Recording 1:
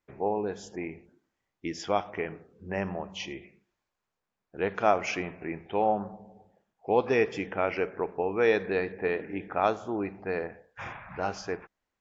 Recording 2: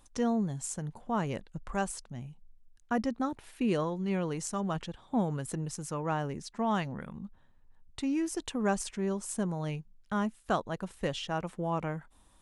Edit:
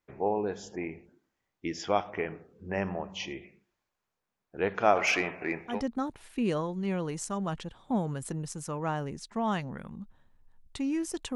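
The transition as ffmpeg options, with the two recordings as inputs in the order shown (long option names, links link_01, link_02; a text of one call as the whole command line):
ffmpeg -i cue0.wav -i cue1.wav -filter_complex "[0:a]asplit=3[link_01][link_02][link_03];[link_01]afade=type=out:start_time=4.95:duration=0.02[link_04];[link_02]asplit=2[link_05][link_06];[link_06]highpass=frequency=720:poles=1,volume=13dB,asoftclip=type=tanh:threshold=-14dB[link_07];[link_05][link_07]amix=inputs=2:normalize=0,lowpass=frequency=6600:poles=1,volume=-6dB,afade=type=in:start_time=4.95:duration=0.02,afade=type=out:start_time=5.82:duration=0.02[link_08];[link_03]afade=type=in:start_time=5.82:duration=0.02[link_09];[link_04][link_08][link_09]amix=inputs=3:normalize=0,apad=whole_dur=11.35,atrim=end=11.35,atrim=end=5.82,asetpts=PTS-STARTPTS[link_10];[1:a]atrim=start=2.87:end=8.58,asetpts=PTS-STARTPTS[link_11];[link_10][link_11]acrossfade=duration=0.18:curve1=tri:curve2=tri" out.wav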